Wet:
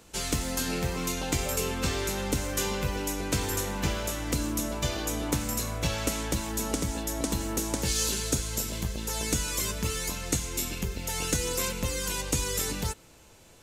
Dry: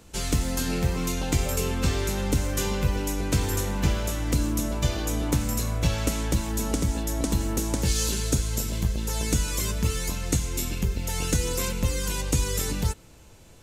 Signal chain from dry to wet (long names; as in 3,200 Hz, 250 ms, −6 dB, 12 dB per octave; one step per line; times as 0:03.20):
low-shelf EQ 220 Hz −8.5 dB